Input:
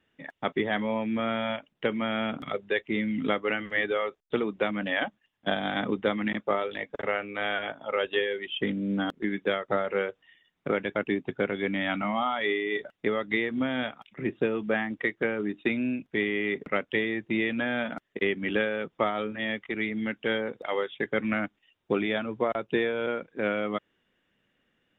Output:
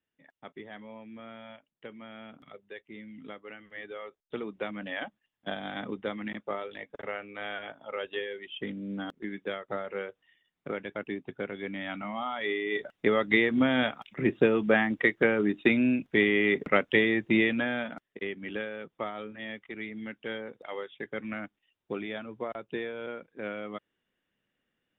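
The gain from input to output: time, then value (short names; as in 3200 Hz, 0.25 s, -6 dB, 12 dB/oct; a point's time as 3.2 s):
3.62 s -17 dB
4.47 s -7.5 dB
12.11 s -7.5 dB
13.23 s +4 dB
17.37 s +4 dB
18.12 s -8.5 dB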